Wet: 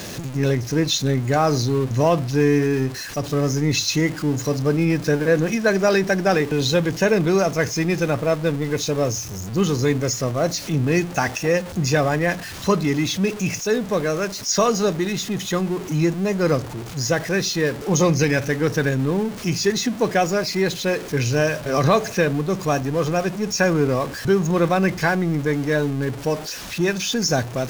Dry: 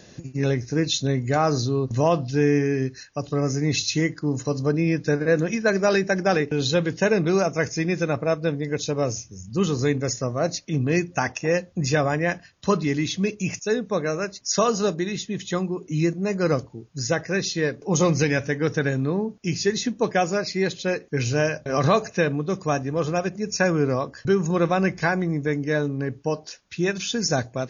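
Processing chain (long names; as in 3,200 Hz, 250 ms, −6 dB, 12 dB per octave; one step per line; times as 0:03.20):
converter with a step at zero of −30 dBFS
level +1.5 dB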